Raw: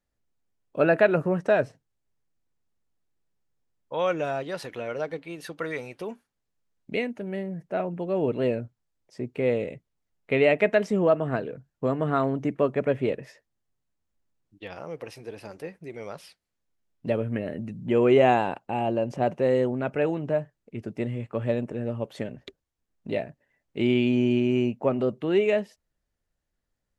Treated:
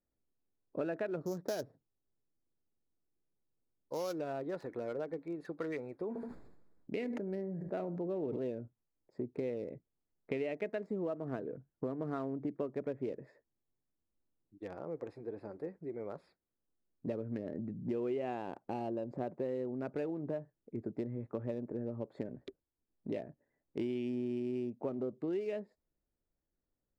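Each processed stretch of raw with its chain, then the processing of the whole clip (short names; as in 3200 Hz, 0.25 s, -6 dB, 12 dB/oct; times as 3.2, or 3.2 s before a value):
1.21–4.19 sample sorter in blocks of 8 samples + Doppler distortion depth 0.1 ms
6.08–8.43 feedback echo 75 ms, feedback 24%, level -17.5 dB + sustainer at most 35 dB/s
whole clip: Wiener smoothing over 15 samples; bell 330 Hz +7.5 dB 1.2 oct; compressor 6:1, threshold -27 dBFS; gain -7.5 dB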